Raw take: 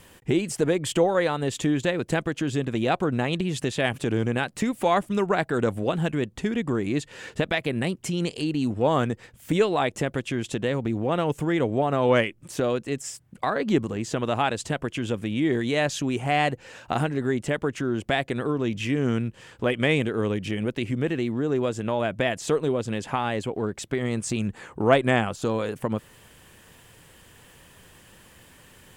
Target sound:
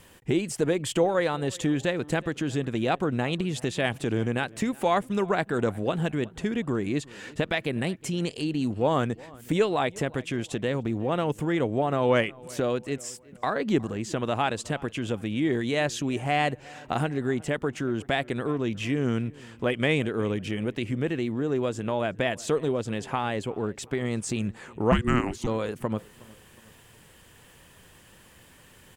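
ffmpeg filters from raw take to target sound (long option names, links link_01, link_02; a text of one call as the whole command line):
ffmpeg -i in.wav -filter_complex "[0:a]asplit=3[link_01][link_02][link_03];[link_01]afade=type=out:start_time=24.91:duration=0.02[link_04];[link_02]afreqshift=-490,afade=type=in:start_time=24.91:duration=0.02,afade=type=out:start_time=25.46:duration=0.02[link_05];[link_03]afade=type=in:start_time=25.46:duration=0.02[link_06];[link_04][link_05][link_06]amix=inputs=3:normalize=0,asplit=2[link_07][link_08];[link_08]adelay=364,lowpass=frequency=3000:poles=1,volume=-22.5dB,asplit=2[link_09][link_10];[link_10]adelay=364,lowpass=frequency=3000:poles=1,volume=0.44,asplit=2[link_11][link_12];[link_12]adelay=364,lowpass=frequency=3000:poles=1,volume=0.44[link_13];[link_09][link_11][link_13]amix=inputs=3:normalize=0[link_14];[link_07][link_14]amix=inputs=2:normalize=0,volume=-2dB" out.wav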